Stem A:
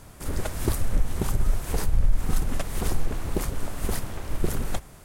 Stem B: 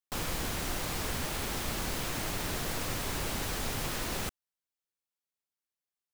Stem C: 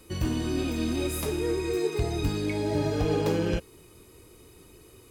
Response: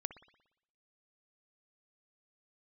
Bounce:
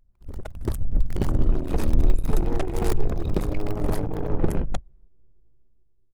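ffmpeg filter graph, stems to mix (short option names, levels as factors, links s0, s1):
-filter_complex "[0:a]volume=0.447[s0];[1:a]flanger=delay=19.5:depth=2.5:speed=0.43,acrusher=bits=4:mix=0:aa=0.000001,volume=0.447[s1];[2:a]aeval=exprs='max(val(0),0)':c=same,alimiter=level_in=1.06:limit=0.0631:level=0:latency=1:release=78,volume=0.944,adelay=1050,volume=0.531,asplit=2[s2][s3];[s3]volume=0.668[s4];[3:a]atrim=start_sample=2205[s5];[s4][s5]afir=irnorm=-1:irlink=0[s6];[s0][s1][s2][s6]amix=inputs=4:normalize=0,anlmdn=6.31,dynaudnorm=f=130:g=11:m=2.99"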